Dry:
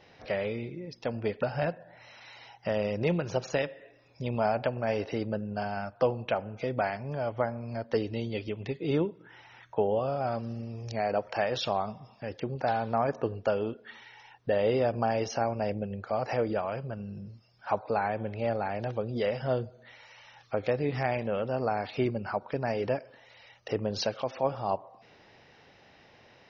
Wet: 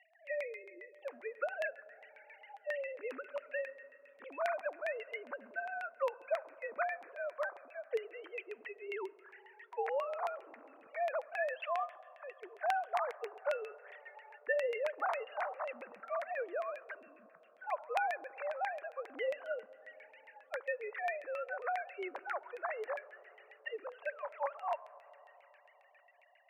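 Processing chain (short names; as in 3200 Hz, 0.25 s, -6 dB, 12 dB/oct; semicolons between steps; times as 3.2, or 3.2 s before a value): sine-wave speech; on a send at -18 dB: reverb RT60 4.5 s, pre-delay 15 ms; on the sum: LFO low-pass saw down 7.4 Hz 820–2200 Hz; differentiator; gain +9.5 dB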